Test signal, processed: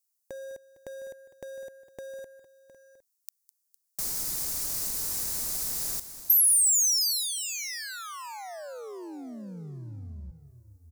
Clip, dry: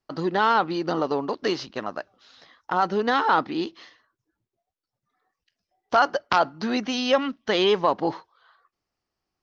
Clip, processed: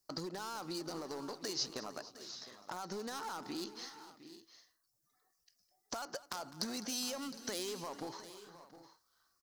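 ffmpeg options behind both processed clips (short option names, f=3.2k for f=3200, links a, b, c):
-filter_complex "[0:a]alimiter=limit=-19dB:level=0:latency=1:release=55,asoftclip=type=hard:threshold=-23dB,acompressor=threshold=-34dB:ratio=6,aexciter=amount=6.2:drive=6.8:freq=4.5k,asplit=2[a][b];[b]aecho=0:1:205|457|711|760:0.141|0.112|0.178|0.119[c];[a][c]amix=inputs=2:normalize=0,volume=-6.5dB"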